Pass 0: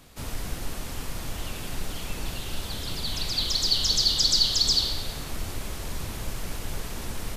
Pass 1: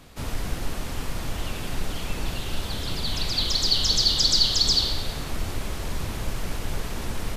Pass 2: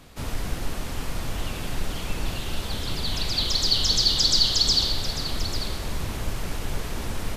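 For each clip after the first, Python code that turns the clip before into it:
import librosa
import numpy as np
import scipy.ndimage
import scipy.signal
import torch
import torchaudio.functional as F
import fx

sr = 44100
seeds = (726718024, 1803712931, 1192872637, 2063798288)

y1 = fx.high_shelf(x, sr, hz=5400.0, db=-6.5)
y1 = y1 * librosa.db_to_amplitude(4.0)
y2 = y1 + 10.0 ** (-12.5 / 20.0) * np.pad(y1, (int(844 * sr / 1000.0), 0))[:len(y1)]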